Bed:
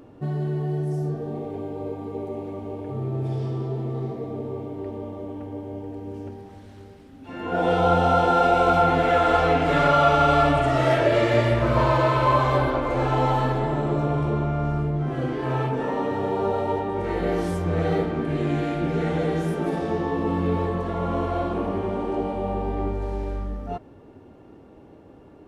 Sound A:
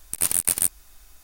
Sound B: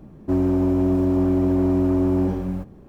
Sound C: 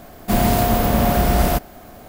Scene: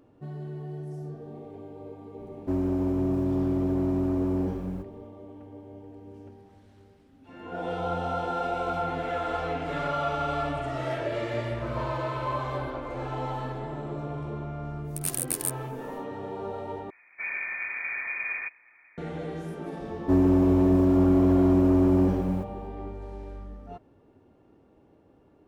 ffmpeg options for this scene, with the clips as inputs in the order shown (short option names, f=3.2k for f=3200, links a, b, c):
-filter_complex "[2:a]asplit=2[a][b];[0:a]volume=-11dB[c];[3:a]lowpass=f=2.1k:t=q:w=0.5098,lowpass=f=2.1k:t=q:w=0.6013,lowpass=f=2.1k:t=q:w=0.9,lowpass=f=2.1k:t=q:w=2.563,afreqshift=-2500[d];[c]asplit=2[e][f];[e]atrim=end=16.904[g];[d]atrim=end=2.08,asetpts=PTS-STARTPTS,volume=-16.5dB[h];[f]atrim=start=18.976[i];[a]atrim=end=2.88,asetpts=PTS-STARTPTS,volume=-7dB,afade=t=in:d=0.004:c=hsin,afade=t=out:st=2.876:d=0.004:c=hsin,adelay=2190[j];[1:a]atrim=end=1.23,asetpts=PTS-STARTPTS,volume=-8.5dB,afade=t=in:d=0.1,afade=t=out:st=1.13:d=0.1,adelay=14830[k];[b]atrim=end=2.88,asetpts=PTS-STARTPTS,volume=-1dB,afade=t=in:d=0.004:c=hsin,afade=t=out:st=2.876:d=0.004:c=hsin,adelay=19800[l];[g][h]acrossfade=d=0.004:c1=hsin:c2=hsin[m];[m][i]acrossfade=d=0.004:c1=hsin:c2=hsin[n];[n][j][k][l]amix=inputs=4:normalize=0"